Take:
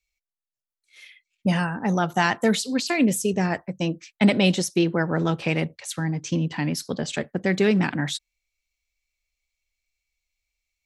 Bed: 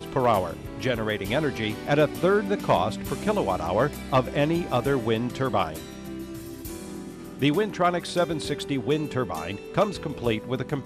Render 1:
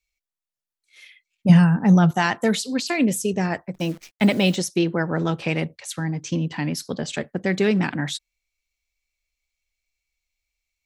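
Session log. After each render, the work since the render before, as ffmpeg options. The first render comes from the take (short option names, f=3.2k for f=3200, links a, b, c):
-filter_complex "[0:a]asettb=1/sr,asplit=3[a][b][c];[a]atrim=end=1.494[d];[b]atrim=start=1.49:end=2.11,asetpts=PTS-STARTPTS,afade=t=in:d=0.004:c=qsin,afade=t=out:st=0.616:d=0.004:c=qsin,equalizer=f=160:t=o:w=0.77:g=13.5[e];[c]atrim=start=2.106[f];[d][e]acrossfade=d=0.004:c1=hsin:c2=qsin[g];[g][f]acrossfade=d=0.004:c1=qsin:c2=hsin,asplit=3[h][i][j];[h]afade=t=out:st=3.74:d=0.02[k];[i]acrusher=bits=8:dc=4:mix=0:aa=0.000001,afade=t=in:st=3.74:d=0.02,afade=t=out:st=4.55:d=0.02[l];[j]afade=t=in:st=4.55:d=0.02[m];[k][l][m]amix=inputs=3:normalize=0"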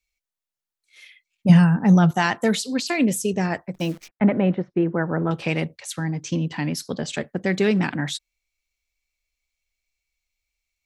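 -filter_complex "[0:a]asettb=1/sr,asplit=3[a][b][c];[a]atrim=end=4.084[d];[b]atrim=start=4.08:end=5.31,asetpts=PTS-STARTPTS,afade=t=in:d=0.004:c=qsin,afade=t=out:st=1.226:d=0.004:c=qsin,lowpass=f=1.8k:w=0.5412,lowpass=f=1.8k:w=1.3066[e];[c]atrim=start=5.306[f];[d][e]acrossfade=d=0.004:c1=hsin:c2=qsin[g];[g][f]acrossfade=d=0.004:c1=qsin:c2=hsin"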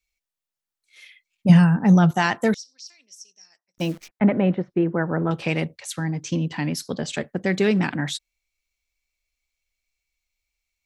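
-filter_complex "[0:a]asettb=1/sr,asplit=3[a][b][c];[a]atrim=end=2.544[d];[b]atrim=start=2.54:end=3.78,asetpts=PTS-STARTPTS,afade=t=in:d=0.004:c=qsin,afade=t=out:st=1.236:d=0.004:c=qsin,bandpass=f=5.6k:t=q:w=14[e];[c]atrim=start=3.776[f];[d][e]acrossfade=d=0.004:c1=hsin:c2=qsin[g];[g][f]acrossfade=d=0.004:c1=qsin:c2=hsin"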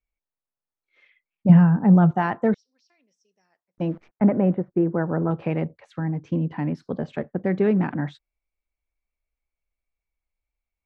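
-af "lowpass=1.2k"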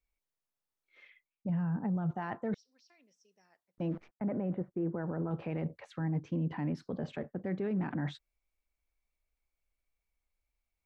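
-af "areverse,acompressor=threshold=-27dB:ratio=4,areverse,alimiter=level_in=2.5dB:limit=-24dB:level=0:latency=1:release=39,volume=-2.5dB"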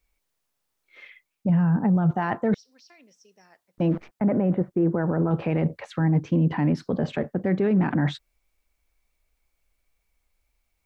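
-af "volume=12dB"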